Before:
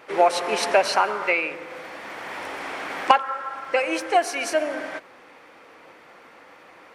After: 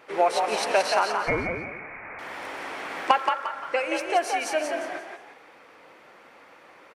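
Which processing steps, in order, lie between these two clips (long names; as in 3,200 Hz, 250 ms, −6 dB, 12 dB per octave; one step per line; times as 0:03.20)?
0:01.26–0:02.19: voice inversion scrambler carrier 2,700 Hz
echo with shifted repeats 175 ms, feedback 34%, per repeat +52 Hz, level −5 dB
level −4 dB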